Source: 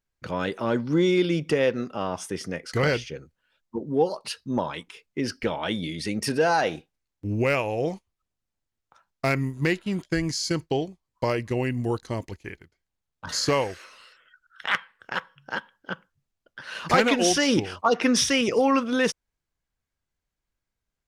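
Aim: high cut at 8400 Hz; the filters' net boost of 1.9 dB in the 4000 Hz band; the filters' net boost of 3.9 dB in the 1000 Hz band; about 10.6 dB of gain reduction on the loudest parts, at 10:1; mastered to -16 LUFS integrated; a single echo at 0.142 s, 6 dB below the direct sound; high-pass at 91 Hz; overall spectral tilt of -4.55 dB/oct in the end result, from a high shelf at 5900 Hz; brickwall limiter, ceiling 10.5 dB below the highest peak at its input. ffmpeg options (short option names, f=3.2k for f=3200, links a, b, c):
-af "highpass=91,lowpass=8.4k,equalizer=f=1k:t=o:g=5,equalizer=f=4k:t=o:g=5.5,highshelf=f=5.9k:g=-7,acompressor=threshold=-23dB:ratio=10,alimiter=limit=-20dB:level=0:latency=1,aecho=1:1:142:0.501,volume=15dB"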